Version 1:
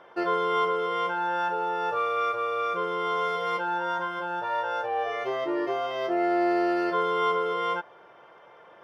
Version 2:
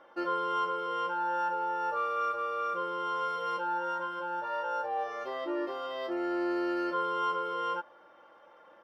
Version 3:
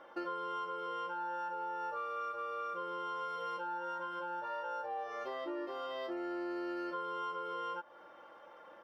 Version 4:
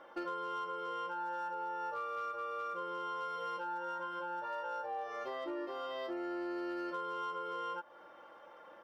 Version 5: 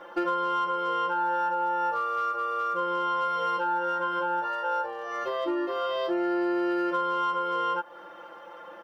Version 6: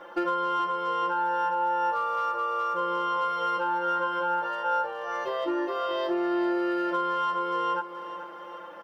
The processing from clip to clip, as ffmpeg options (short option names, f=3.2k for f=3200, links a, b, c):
-af "aecho=1:1:3.6:0.74,volume=-7dB"
-af "acompressor=threshold=-40dB:ratio=4,volume=1.5dB"
-af "asoftclip=type=hard:threshold=-32.5dB"
-af "aecho=1:1:5.8:0.82,volume=7.5dB"
-af "aecho=1:1:427|854|1281|1708|2135|2562:0.251|0.138|0.076|0.0418|0.023|0.0126"